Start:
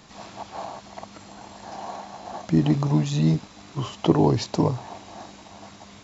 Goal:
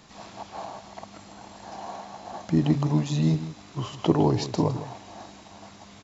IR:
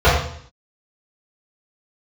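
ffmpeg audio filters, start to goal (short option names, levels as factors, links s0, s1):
-af "aecho=1:1:159:0.237,volume=0.75"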